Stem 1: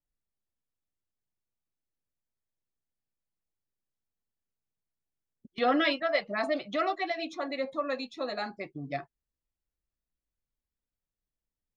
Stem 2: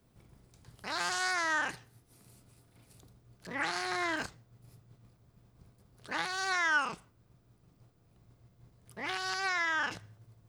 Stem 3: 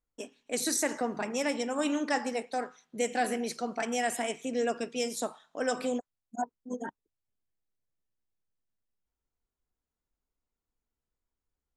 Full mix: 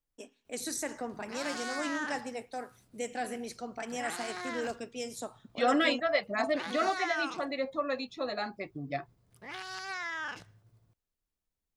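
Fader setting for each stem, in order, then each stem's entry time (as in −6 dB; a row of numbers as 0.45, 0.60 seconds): −0.5, −6.0, −6.5 decibels; 0.00, 0.45, 0.00 seconds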